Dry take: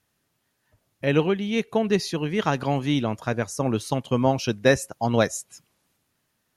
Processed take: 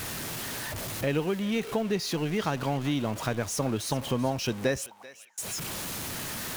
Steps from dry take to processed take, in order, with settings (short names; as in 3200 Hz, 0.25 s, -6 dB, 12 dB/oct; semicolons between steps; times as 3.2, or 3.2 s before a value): zero-crossing step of -29.5 dBFS; compressor 2.5:1, threshold -28 dBFS, peak gain reduction 11 dB; 4.86–5.38 auto-wah 580–2800 Hz, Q 22, up, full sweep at -23 dBFS; on a send: thinning echo 0.388 s, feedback 23%, high-pass 1000 Hz, level -15 dB